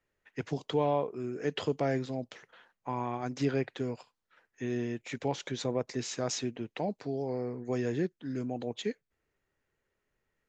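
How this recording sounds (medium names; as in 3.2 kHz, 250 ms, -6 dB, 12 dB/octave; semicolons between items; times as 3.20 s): noise floor -84 dBFS; spectral tilt -5.5 dB/octave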